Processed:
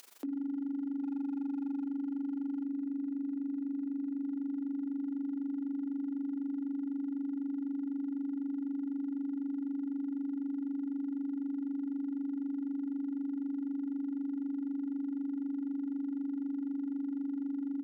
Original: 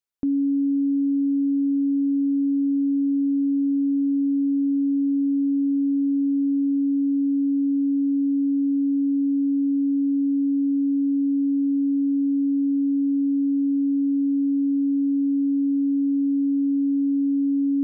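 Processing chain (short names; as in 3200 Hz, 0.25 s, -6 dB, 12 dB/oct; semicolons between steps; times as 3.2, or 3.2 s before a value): Chebyshev high-pass 230 Hz, order 6; notches 60/120/180/240/300 Hz; on a send: feedback echo 0.8 s, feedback 55%, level -11 dB; on the sum: upward compressor, threshold -26 dBFS; AM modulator 24 Hz, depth 75%; hard clip -20.5 dBFS, distortion -27 dB; limiter -31 dBFS, peak gain reduction 10.5 dB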